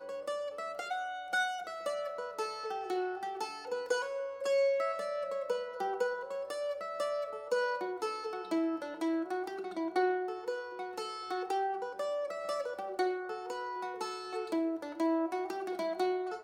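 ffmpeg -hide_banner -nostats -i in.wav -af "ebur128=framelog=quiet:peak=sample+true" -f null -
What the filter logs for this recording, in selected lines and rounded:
Integrated loudness:
  I:         -35.5 LUFS
  Threshold: -45.4 LUFS
Loudness range:
  LRA:         2.3 LU
  Threshold: -55.4 LUFS
  LRA low:   -36.6 LUFS
  LRA high:  -34.3 LUFS
Sample peak:
  Peak:      -18.9 dBFS
True peak:
  Peak:      -18.9 dBFS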